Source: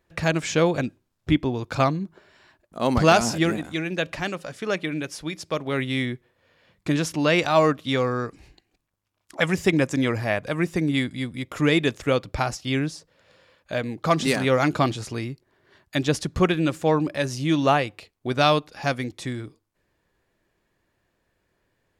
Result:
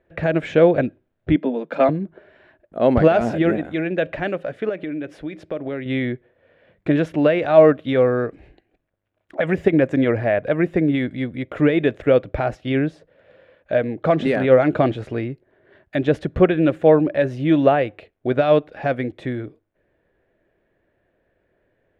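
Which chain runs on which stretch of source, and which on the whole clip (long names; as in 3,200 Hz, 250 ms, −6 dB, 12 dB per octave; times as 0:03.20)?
0:01.36–0:01.89: Butterworth high-pass 160 Hz 96 dB per octave + notch comb filter 370 Hz
0:04.69–0:05.86: parametric band 300 Hz +6 dB 0.25 octaves + downward compressor, threshold −30 dBFS
whole clip: flat-topped bell 2,400 Hz +13 dB; brickwall limiter −5 dBFS; drawn EQ curve 180 Hz 0 dB, 630 Hz +8 dB, 920 Hz −4 dB, 4,300 Hz −23 dB; level +2.5 dB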